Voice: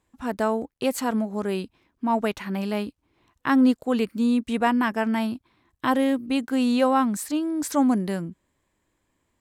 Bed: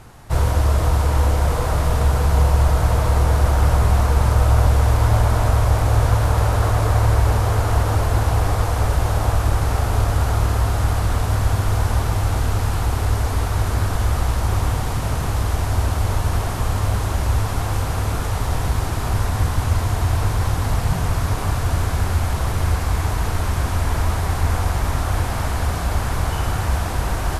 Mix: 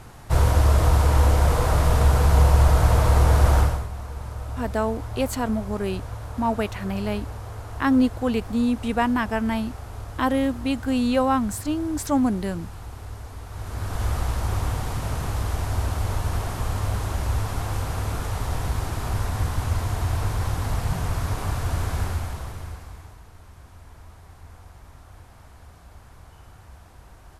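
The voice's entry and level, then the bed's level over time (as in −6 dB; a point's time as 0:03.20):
4.35 s, −0.5 dB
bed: 0:03.59 −0.5 dB
0:03.89 −17.5 dB
0:13.44 −17.5 dB
0:14.04 −5.5 dB
0:22.03 −5.5 dB
0:23.25 −26 dB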